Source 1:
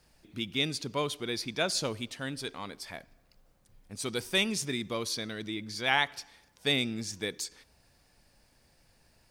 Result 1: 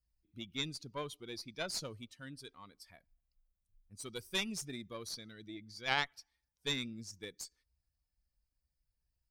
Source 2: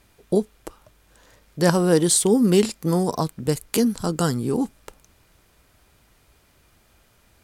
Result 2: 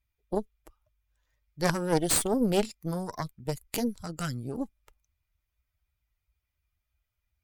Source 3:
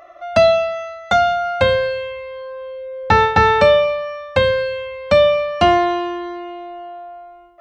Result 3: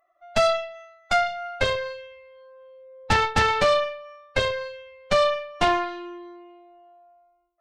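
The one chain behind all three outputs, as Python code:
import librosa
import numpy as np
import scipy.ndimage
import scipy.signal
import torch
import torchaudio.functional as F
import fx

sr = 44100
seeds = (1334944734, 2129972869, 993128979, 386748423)

y = fx.bin_expand(x, sr, power=1.5)
y = fx.peak_eq(y, sr, hz=620.0, db=-2.5, octaves=2.0)
y = fx.cheby_harmonics(y, sr, harmonics=(6,), levels_db=(-12,), full_scale_db=-3.0)
y = y * 10.0 ** (-6.5 / 20.0)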